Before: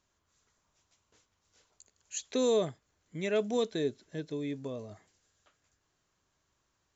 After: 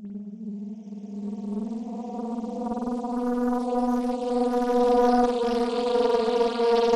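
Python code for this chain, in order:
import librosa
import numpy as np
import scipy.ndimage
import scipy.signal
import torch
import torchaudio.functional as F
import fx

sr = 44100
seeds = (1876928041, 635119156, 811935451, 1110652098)

y = fx.bin_expand(x, sr, power=1.5)
y = fx.paulstretch(y, sr, seeds[0], factor=45.0, window_s=0.1, from_s=3.46)
y = fx.rev_spring(y, sr, rt60_s=1.2, pass_ms=(49,), chirp_ms=50, drr_db=-4.0)
y = fx.doppler_dist(y, sr, depth_ms=0.73)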